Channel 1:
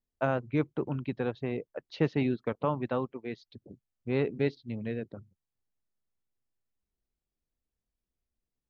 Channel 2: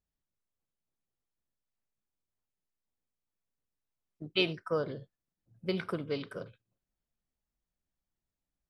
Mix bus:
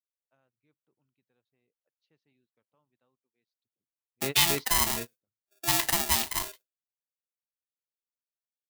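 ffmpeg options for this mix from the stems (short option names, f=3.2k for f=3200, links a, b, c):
-filter_complex "[0:a]adelay=100,volume=-6.5dB[a];[1:a]agate=range=-33dB:threshold=-52dB:ratio=3:detection=peak,acontrast=45,aeval=exprs='val(0)*sgn(sin(2*PI*510*n/s))':c=same,volume=-3.5dB,asplit=2[b][c];[c]apad=whole_len=387665[d];[a][d]sidechaingate=range=-40dB:threshold=-43dB:ratio=16:detection=peak[e];[e][b]amix=inputs=2:normalize=0,crystalizer=i=6.5:c=0,alimiter=limit=-3.5dB:level=0:latency=1:release=26"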